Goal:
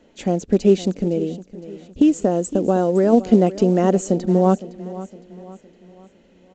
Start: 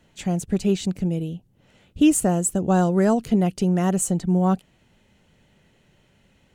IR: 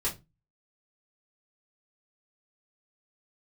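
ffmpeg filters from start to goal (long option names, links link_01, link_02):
-filter_complex "[0:a]equalizer=frequency=125:width_type=o:width=1:gain=-12,equalizer=frequency=250:width_type=o:width=1:gain=10,equalizer=frequency=500:width_type=o:width=1:gain=10,asplit=3[link_01][link_02][link_03];[link_01]afade=type=out:start_time=0.98:duration=0.02[link_04];[link_02]acompressor=threshold=-15dB:ratio=2.5,afade=type=in:start_time=0.98:duration=0.02,afade=type=out:start_time=3.12:duration=0.02[link_05];[link_03]afade=type=in:start_time=3.12:duration=0.02[link_06];[link_04][link_05][link_06]amix=inputs=3:normalize=0,aecho=1:1:511|1022|1533|2044:0.158|0.0666|0.028|0.0117" -ar 16000 -c:a pcm_mulaw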